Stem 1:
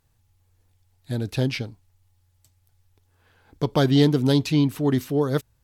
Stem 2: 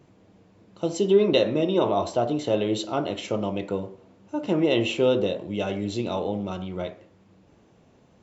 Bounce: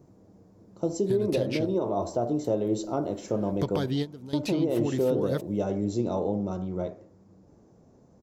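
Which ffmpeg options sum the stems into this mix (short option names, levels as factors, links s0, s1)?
-filter_complex "[0:a]acompressor=threshold=0.0501:ratio=10,volume=1.33[s0];[1:a]firequalizer=gain_entry='entry(360,0);entry(2900,-21);entry(5200,-3)':delay=0.05:min_phase=1,volume=1.12,asplit=2[s1][s2];[s2]apad=whole_len=248680[s3];[s0][s3]sidechaingate=range=0.178:threshold=0.00398:ratio=16:detection=peak[s4];[s4][s1]amix=inputs=2:normalize=0,alimiter=limit=0.15:level=0:latency=1:release=369"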